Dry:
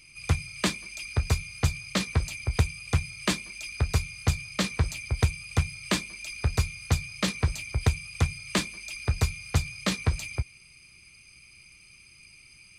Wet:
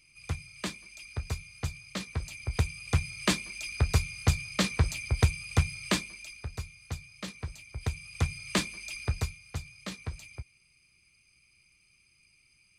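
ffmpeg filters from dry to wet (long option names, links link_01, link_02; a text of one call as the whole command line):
ffmpeg -i in.wav -af "volume=11dB,afade=type=in:start_time=2.12:duration=1.09:silence=0.354813,afade=type=out:start_time=5.81:duration=0.65:silence=0.237137,afade=type=in:start_time=7.71:duration=0.73:silence=0.281838,afade=type=out:start_time=8.96:duration=0.43:silence=0.298538" out.wav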